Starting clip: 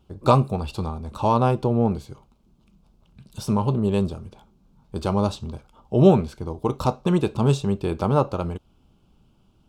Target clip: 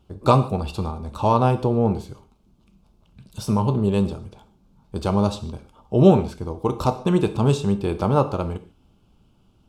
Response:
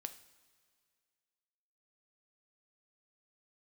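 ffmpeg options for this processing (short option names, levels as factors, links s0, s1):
-filter_complex "[0:a]asplit=2[s0][s1];[1:a]atrim=start_sample=2205,afade=t=out:st=0.15:d=0.01,atrim=end_sample=7056,asetrate=28665,aresample=44100[s2];[s1][s2]afir=irnorm=-1:irlink=0,volume=2.66[s3];[s0][s3]amix=inputs=2:normalize=0,volume=0.355"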